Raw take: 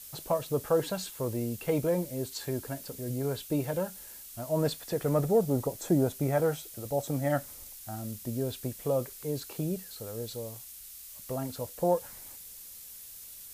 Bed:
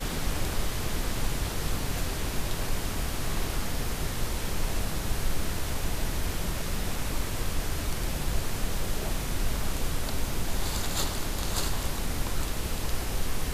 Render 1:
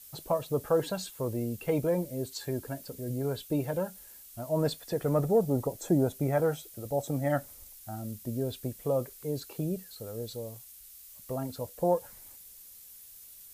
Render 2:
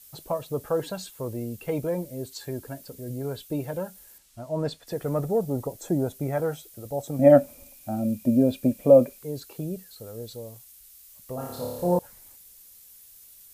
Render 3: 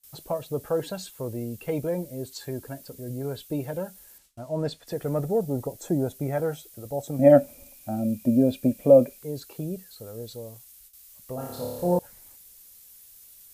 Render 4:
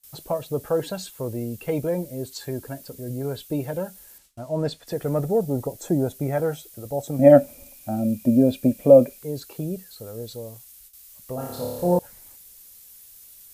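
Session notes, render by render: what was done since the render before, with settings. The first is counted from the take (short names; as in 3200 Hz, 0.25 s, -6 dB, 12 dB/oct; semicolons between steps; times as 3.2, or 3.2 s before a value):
denoiser 6 dB, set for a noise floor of -47 dBFS
4.18–4.87 air absorption 51 m; 7.19–9.19 small resonant body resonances 250/560/2400 Hz, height 17 dB, ringing for 30 ms; 11.35–11.99 flutter echo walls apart 4.8 m, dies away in 1.1 s
gate with hold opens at -40 dBFS; dynamic EQ 1100 Hz, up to -5 dB, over -48 dBFS, Q 3.4
gain +3 dB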